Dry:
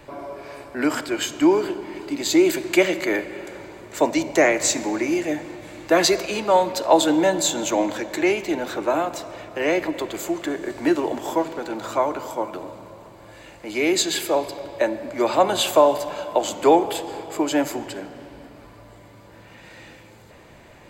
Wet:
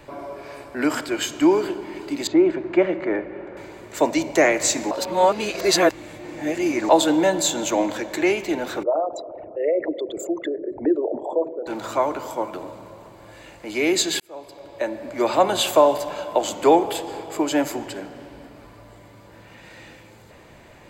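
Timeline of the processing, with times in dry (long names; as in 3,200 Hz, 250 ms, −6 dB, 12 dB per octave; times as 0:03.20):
0:02.27–0:03.57: low-pass filter 1,400 Hz
0:04.91–0:06.89: reverse
0:08.83–0:11.67: spectral envelope exaggerated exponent 3
0:14.20–0:15.26: fade in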